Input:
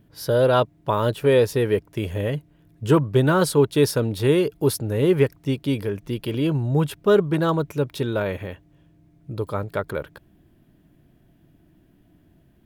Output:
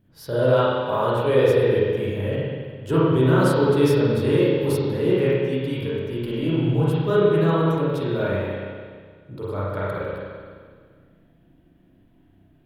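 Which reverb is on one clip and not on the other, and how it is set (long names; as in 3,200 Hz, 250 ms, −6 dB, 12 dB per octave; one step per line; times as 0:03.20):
spring reverb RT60 1.8 s, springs 31/42 ms, chirp 20 ms, DRR −8.5 dB
level −8.5 dB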